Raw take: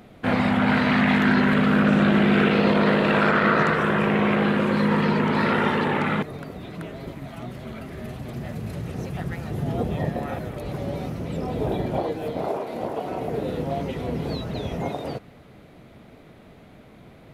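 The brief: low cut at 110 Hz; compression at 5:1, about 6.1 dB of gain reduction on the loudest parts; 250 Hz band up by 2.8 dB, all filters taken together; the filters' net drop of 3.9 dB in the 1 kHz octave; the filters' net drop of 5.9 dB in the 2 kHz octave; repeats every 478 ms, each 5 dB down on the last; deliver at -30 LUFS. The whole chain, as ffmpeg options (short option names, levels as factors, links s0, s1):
-af "highpass=110,equalizer=f=250:t=o:g=4,equalizer=f=1000:t=o:g=-3.5,equalizer=f=2000:t=o:g=-6.5,acompressor=threshold=0.1:ratio=5,aecho=1:1:478|956|1434|1912|2390|2868|3346:0.562|0.315|0.176|0.0988|0.0553|0.031|0.0173,volume=0.596"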